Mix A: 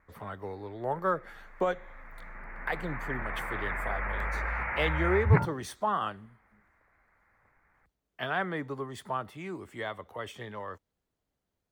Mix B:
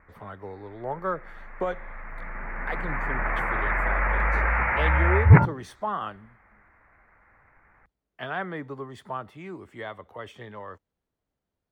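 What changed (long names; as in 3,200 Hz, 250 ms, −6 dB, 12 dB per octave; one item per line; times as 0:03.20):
background +9.5 dB
master: add high-shelf EQ 5,100 Hz −10 dB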